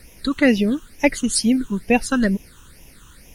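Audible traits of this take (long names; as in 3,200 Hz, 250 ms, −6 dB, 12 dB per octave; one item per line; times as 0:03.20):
a quantiser's noise floor 12 bits, dither triangular
phaser sweep stages 8, 2.2 Hz, lowest notch 630–1,300 Hz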